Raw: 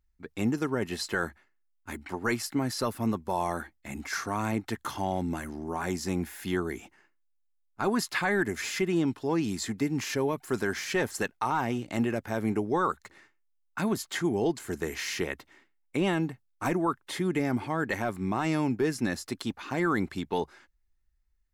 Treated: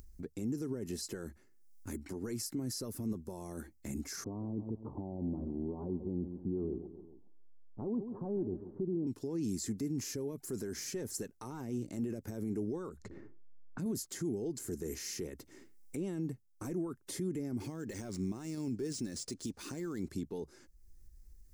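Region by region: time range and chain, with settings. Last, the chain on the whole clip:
4.24–9.07 s: steep low-pass 1 kHz 48 dB/octave + feedback delay 137 ms, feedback 35%, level -14.5 dB
12.89–13.86 s: bass shelf 490 Hz +9.5 dB + level-controlled noise filter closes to 760 Hz, open at -29.5 dBFS + compression 3:1, threshold -40 dBFS
17.60–20.08 s: peaking EQ 14 kHz +13 dB 2.7 oct + decimation joined by straight lines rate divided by 3×
whole clip: peak limiter -28 dBFS; high-order bell 1.6 kHz -15 dB 2.9 oct; upward compressor, threshold -38 dBFS

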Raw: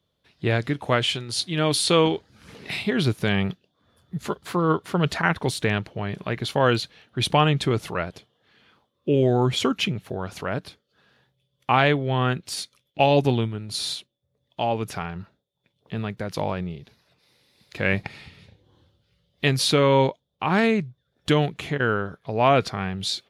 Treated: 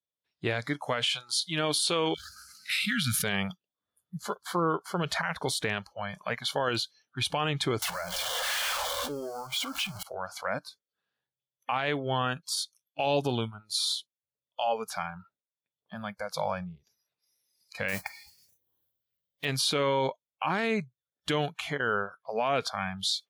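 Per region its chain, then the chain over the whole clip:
2.14–3.24 s: brick-wall FIR band-stop 270–1200 Hz + treble shelf 7.2 kHz +9.5 dB + decay stretcher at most 29 dB/s
7.82–10.03 s: jump at every zero crossing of -23 dBFS + compression 4:1, threshold -29 dBFS
17.88–19.45 s: band-stop 1.3 kHz, Q 19 + modulation noise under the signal 15 dB
whole clip: spectral noise reduction 23 dB; bass shelf 340 Hz -9.5 dB; peak limiter -18 dBFS

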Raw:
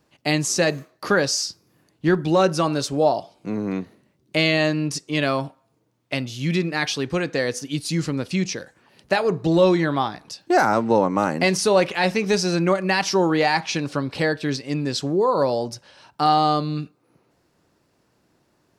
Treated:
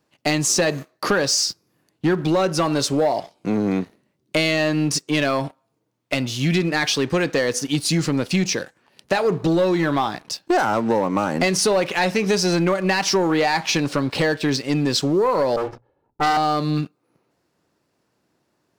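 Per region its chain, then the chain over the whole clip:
15.56–16.37 s: comb filter that takes the minimum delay 2.3 ms + level-controlled noise filter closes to 320 Hz, open at -19 dBFS + hum notches 60/120 Hz
whole clip: bass shelf 69 Hz -11 dB; compression 5:1, threshold -22 dBFS; waveshaping leveller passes 2

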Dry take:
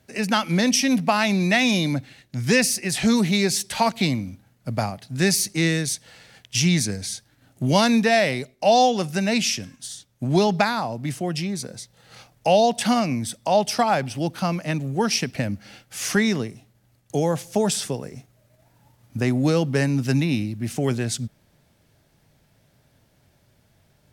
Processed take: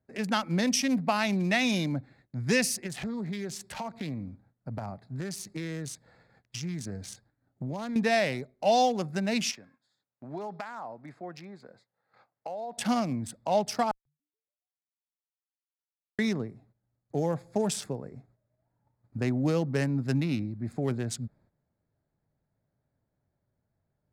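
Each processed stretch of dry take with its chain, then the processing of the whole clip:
2.86–7.96 s: compression, threshold -24 dBFS + loudspeaker Doppler distortion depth 0.15 ms
9.51–12.78 s: band-pass filter 1.5 kHz, Q 0.55 + compression 10:1, threshold -25 dBFS
13.91–16.19 s: compression 10:1, threshold -35 dBFS + Schmitt trigger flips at -27 dBFS + frequency-shifting echo 141 ms, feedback 60%, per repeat -150 Hz, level -22 dB
whole clip: local Wiener filter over 15 samples; gate -54 dBFS, range -11 dB; trim -6.5 dB

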